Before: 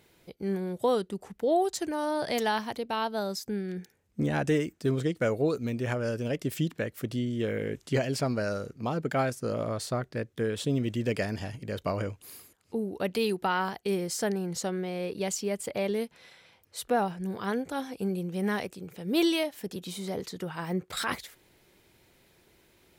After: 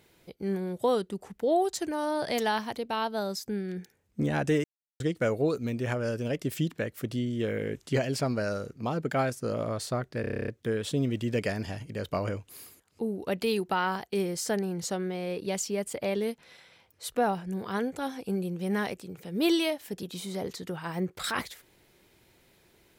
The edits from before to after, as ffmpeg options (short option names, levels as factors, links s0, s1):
-filter_complex "[0:a]asplit=12[s0][s1][s2][s3][s4][s5][s6][s7][s8][s9][s10][s11];[s0]atrim=end=4.64,asetpts=PTS-STARTPTS,afade=t=out:st=4.636:d=0.004:c=hsin[s12];[s1]atrim=start=4.64:end=5,asetpts=PTS-STARTPTS,volume=0[s13];[s2]atrim=start=5:end=10.242,asetpts=PTS-STARTPTS,afade=t=in:d=0.004:c=hsin[s14];[s3]atrim=start=10.208:end=10.242[s15];[s4]atrim=start=10.208:end=10.242[s16];[s5]atrim=start=10.208:end=10.242[s17];[s6]atrim=start=10.208:end=10.242[s18];[s7]atrim=start=10.208:end=10.242[s19];[s8]atrim=start=10.208:end=10.242[s20];[s9]atrim=start=10.208:end=10.242[s21];[s10]atrim=start=10.208:end=10.242[s22];[s11]atrim=start=10.208[s23];[s12][s13][s14]concat=n=3:v=0:a=1[s24];[s24][s15]acrossfade=d=0.004:c1=hsin:c2=hsin[s25];[s25][s16]acrossfade=d=0.004:c1=hsin:c2=hsin[s26];[s26][s17]acrossfade=d=0.004:c1=hsin:c2=hsin[s27];[s27][s18]acrossfade=d=0.004:c1=hsin:c2=hsin[s28];[s28][s19]acrossfade=d=0.004:c1=hsin:c2=hsin[s29];[s29][s20]acrossfade=d=0.004:c1=hsin:c2=hsin[s30];[s30][s21]acrossfade=d=0.004:c1=hsin:c2=hsin[s31];[s31][s22]acrossfade=d=0.004:c1=hsin:c2=hsin[s32];[s32][s23]acrossfade=d=0.004:c1=hsin:c2=hsin"